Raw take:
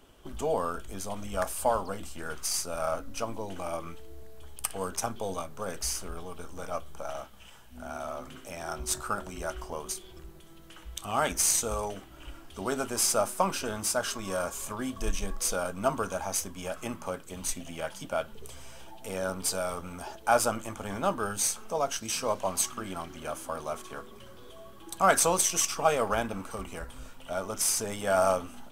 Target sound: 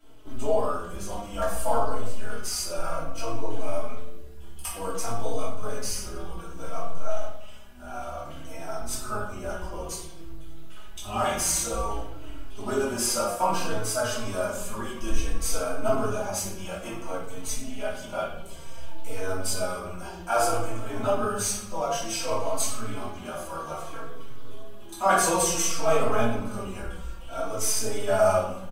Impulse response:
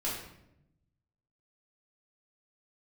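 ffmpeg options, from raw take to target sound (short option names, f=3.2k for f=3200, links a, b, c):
-filter_complex "[0:a]asettb=1/sr,asplit=3[a][b][c];[a]atrim=end=8.464[d];[b]atrim=start=8.46:end=9.59,asetpts=PTS-STARTPTS,afade=t=in:d=0.004:c=qsin,afade=t=out:st=1.126:d=0.004:c=qsin,equalizer=f=3.7k:w=0.35:g=-3.5[e];[c]atrim=start=9.586[f];[d][e]acrossfade=d=0.004:c1=hsin:c2=qsin[g];[g][f]acrossfade=d=0.004:c1=qsin:c2=hsin[h];[1:a]atrim=start_sample=2205[i];[h][i]afir=irnorm=-1:irlink=0,asplit=2[j][k];[k]adelay=4,afreqshift=-0.58[l];[j][l]amix=inputs=2:normalize=1"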